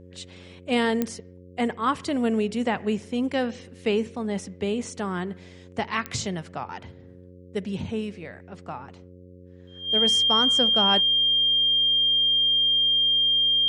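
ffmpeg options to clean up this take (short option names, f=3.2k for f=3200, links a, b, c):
-af "adeclick=t=4,bandreject=f=90.2:t=h:w=4,bandreject=f=180.4:t=h:w=4,bandreject=f=270.6:t=h:w=4,bandreject=f=360.8:t=h:w=4,bandreject=f=451:t=h:w=4,bandreject=f=541.2:t=h:w=4,bandreject=f=3.2k:w=30"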